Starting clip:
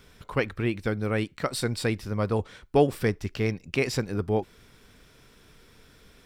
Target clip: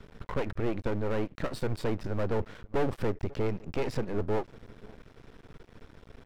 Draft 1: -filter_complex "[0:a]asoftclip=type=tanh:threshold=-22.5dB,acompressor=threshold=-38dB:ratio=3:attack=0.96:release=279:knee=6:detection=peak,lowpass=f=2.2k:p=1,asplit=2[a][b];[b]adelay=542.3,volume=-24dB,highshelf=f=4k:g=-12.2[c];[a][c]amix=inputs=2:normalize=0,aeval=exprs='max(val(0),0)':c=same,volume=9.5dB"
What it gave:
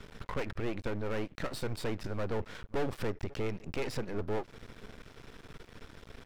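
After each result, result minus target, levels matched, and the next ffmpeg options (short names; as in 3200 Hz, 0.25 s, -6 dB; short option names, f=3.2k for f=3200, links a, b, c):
compressor: peak gain reduction +5.5 dB; 2000 Hz band +3.5 dB
-filter_complex "[0:a]asoftclip=type=tanh:threshold=-22.5dB,acompressor=threshold=-30dB:ratio=3:attack=0.96:release=279:knee=6:detection=peak,lowpass=f=2.2k:p=1,asplit=2[a][b];[b]adelay=542.3,volume=-24dB,highshelf=f=4k:g=-12.2[c];[a][c]amix=inputs=2:normalize=0,aeval=exprs='max(val(0),0)':c=same,volume=9.5dB"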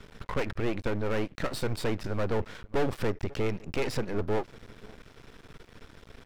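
2000 Hz band +3.5 dB
-filter_complex "[0:a]asoftclip=type=tanh:threshold=-22.5dB,acompressor=threshold=-30dB:ratio=3:attack=0.96:release=279:knee=6:detection=peak,lowpass=f=850:p=1,asplit=2[a][b];[b]adelay=542.3,volume=-24dB,highshelf=f=4k:g=-12.2[c];[a][c]amix=inputs=2:normalize=0,aeval=exprs='max(val(0),0)':c=same,volume=9.5dB"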